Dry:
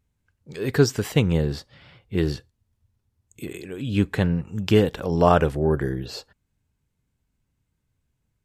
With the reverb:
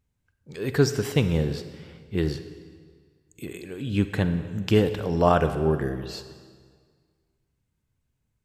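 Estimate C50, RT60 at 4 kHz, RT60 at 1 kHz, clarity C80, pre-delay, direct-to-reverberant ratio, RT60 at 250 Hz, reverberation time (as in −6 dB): 10.5 dB, 1.5 s, 1.8 s, 12.0 dB, 36 ms, 10.0 dB, 1.9 s, 1.8 s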